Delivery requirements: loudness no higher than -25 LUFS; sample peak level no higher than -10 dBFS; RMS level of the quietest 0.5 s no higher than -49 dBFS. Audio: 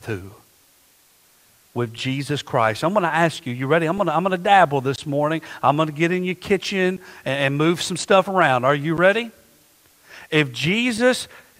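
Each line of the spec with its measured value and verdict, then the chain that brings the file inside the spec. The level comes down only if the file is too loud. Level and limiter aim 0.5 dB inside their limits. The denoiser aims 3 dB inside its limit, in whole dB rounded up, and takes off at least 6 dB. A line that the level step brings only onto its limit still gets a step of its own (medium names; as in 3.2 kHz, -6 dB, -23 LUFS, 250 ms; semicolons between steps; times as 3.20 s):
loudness -20.0 LUFS: fail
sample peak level -2.0 dBFS: fail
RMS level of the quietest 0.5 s -56 dBFS: pass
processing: trim -5.5 dB; peak limiter -10.5 dBFS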